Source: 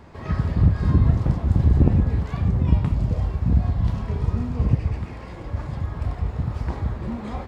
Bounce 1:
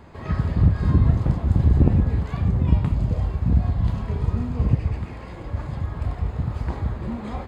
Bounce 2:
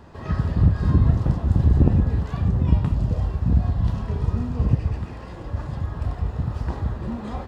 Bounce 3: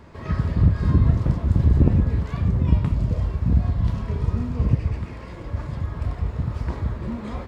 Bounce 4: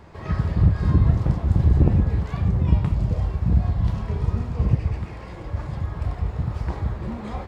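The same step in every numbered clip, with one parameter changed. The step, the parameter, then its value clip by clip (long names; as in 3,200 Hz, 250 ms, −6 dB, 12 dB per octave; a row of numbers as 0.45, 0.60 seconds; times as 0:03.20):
notch filter, centre frequency: 5,600, 2,200, 780, 250 Hertz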